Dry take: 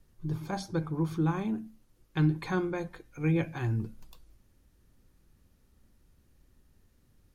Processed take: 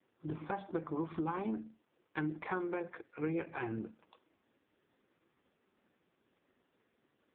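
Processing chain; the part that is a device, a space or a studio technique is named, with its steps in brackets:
voicemail (band-pass filter 360–2,800 Hz; downward compressor 10 to 1, threshold −37 dBFS, peak gain reduction 10 dB; level +5.5 dB; AMR narrowband 4.75 kbit/s 8,000 Hz)

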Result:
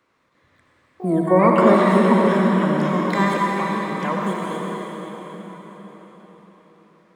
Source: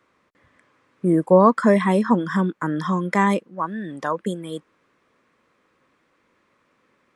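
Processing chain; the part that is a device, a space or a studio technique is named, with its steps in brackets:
shimmer-style reverb (pitch-shifted copies added +12 semitones −11 dB; convolution reverb RT60 5.2 s, pre-delay 58 ms, DRR −3 dB)
level −3 dB

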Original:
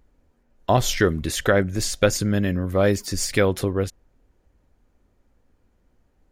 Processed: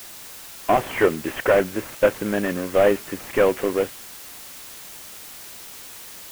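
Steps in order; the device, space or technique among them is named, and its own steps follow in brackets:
army field radio (band-pass filter 320–3,300 Hz; variable-slope delta modulation 16 kbit/s; white noise bed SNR 16 dB)
level +5.5 dB

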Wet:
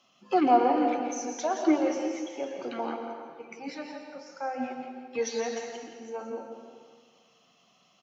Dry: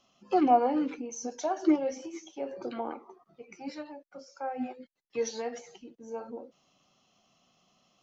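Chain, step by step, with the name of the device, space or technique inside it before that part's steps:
PA in a hall (high-pass filter 110 Hz 24 dB per octave; parametric band 2,100 Hz +5.5 dB 2.2 octaves; single-tap delay 170 ms −9.5 dB; convolution reverb RT60 1.7 s, pre-delay 107 ms, DRR 5 dB)

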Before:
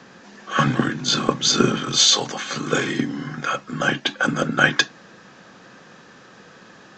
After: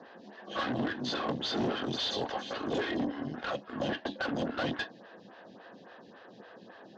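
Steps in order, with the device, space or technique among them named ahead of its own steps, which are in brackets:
vibe pedal into a guitar amplifier (phaser with staggered stages 3.6 Hz; tube saturation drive 29 dB, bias 0.65; loudspeaker in its box 100–4,200 Hz, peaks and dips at 150 Hz −7 dB, 660 Hz +5 dB, 1,300 Hz −8 dB, 2,300 Hz −9 dB)
level +2 dB

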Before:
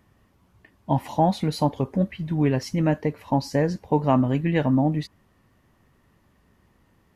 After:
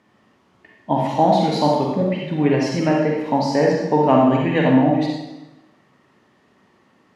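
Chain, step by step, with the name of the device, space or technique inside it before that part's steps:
supermarket ceiling speaker (band-pass filter 220–6,300 Hz; convolution reverb RT60 1.0 s, pre-delay 40 ms, DRR −2 dB)
level +4 dB

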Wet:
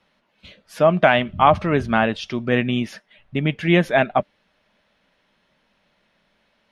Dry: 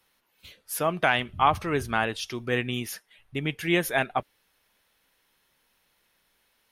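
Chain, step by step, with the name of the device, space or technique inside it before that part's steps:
inside a cardboard box (low-pass filter 3,900 Hz 12 dB per octave; hollow resonant body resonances 200/600 Hz, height 10 dB, ringing for 35 ms)
level +5 dB

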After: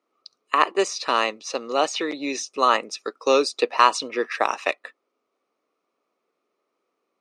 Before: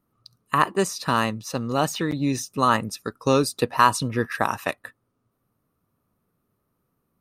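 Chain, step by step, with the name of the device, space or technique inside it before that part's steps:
phone speaker on a table (loudspeaker in its box 360–6,700 Hz, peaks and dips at 930 Hz −4 dB, 1,600 Hz −7 dB, 2,300 Hz +6 dB)
level +3.5 dB

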